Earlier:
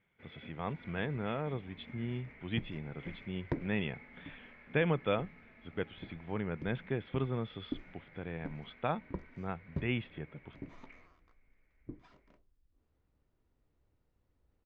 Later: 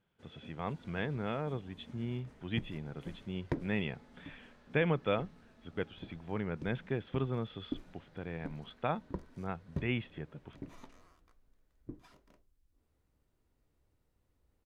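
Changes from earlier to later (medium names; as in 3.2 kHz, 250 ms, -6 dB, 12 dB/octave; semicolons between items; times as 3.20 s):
first sound: remove resonant low-pass 2.2 kHz, resonance Q 13; second sound: remove distance through air 150 m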